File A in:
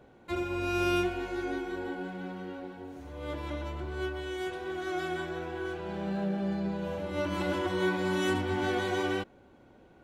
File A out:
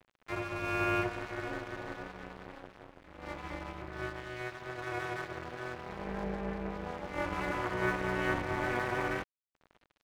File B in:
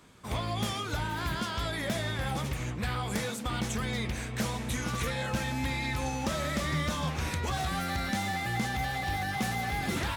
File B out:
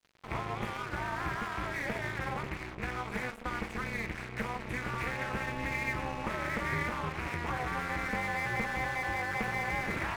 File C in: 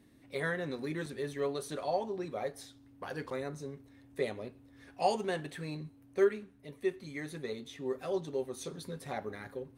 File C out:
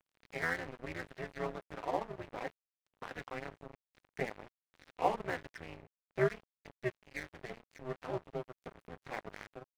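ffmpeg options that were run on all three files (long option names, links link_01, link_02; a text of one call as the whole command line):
ffmpeg -i in.wav -af "highshelf=frequency=3100:width_type=q:width=3:gain=-12.5,acompressor=mode=upward:threshold=-36dB:ratio=2.5,adynamicequalizer=threshold=0.00398:dfrequency=1000:dqfactor=1.7:tfrequency=1000:tqfactor=1.7:attack=5:release=100:ratio=0.375:range=2.5:mode=boostabove:tftype=bell,tremolo=f=250:d=0.824,aeval=exprs='sgn(val(0))*max(abs(val(0))-0.0075,0)':channel_layout=same" out.wav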